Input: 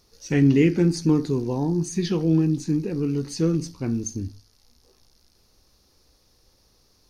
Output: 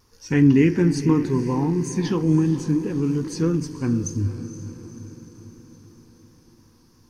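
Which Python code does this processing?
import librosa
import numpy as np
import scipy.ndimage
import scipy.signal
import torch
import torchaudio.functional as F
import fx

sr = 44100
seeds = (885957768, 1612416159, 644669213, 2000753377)

y = fx.graphic_eq_31(x, sr, hz=(100, 250, 630, 1000, 1600, 4000), db=(10, 5, -8, 10, 6, -7))
y = fx.vibrato(y, sr, rate_hz=2.9, depth_cents=46.0)
y = fx.echo_diffused(y, sr, ms=488, feedback_pct=56, wet_db=-12.5)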